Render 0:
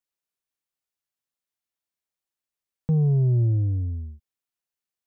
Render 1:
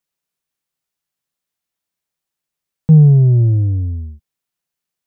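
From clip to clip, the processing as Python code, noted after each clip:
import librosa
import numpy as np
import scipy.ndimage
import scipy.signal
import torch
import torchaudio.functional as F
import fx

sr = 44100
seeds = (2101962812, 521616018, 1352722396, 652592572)

y = fx.peak_eq(x, sr, hz=160.0, db=7.5, octaves=0.47)
y = y * librosa.db_to_amplitude(7.0)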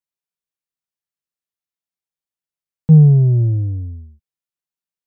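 y = fx.upward_expand(x, sr, threshold_db=-28.0, expansion=1.5)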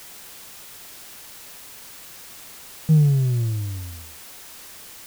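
y = fx.dmg_noise_colour(x, sr, seeds[0], colour='white', level_db=-34.0)
y = y * librosa.db_to_amplitude(-8.0)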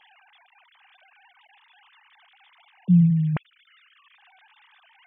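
y = fx.sine_speech(x, sr)
y = fx.notch(y, sr, hz=1400.0, q=14.0)
y = y * librosa.db_to_amplitude(-1.5)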